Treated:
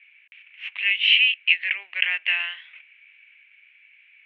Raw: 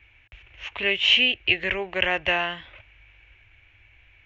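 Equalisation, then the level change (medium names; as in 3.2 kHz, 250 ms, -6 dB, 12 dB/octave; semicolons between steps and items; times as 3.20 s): resonant high-pass 2.3 kHz, resonance Q 2.5; distance through air 290 m; 0.0 dB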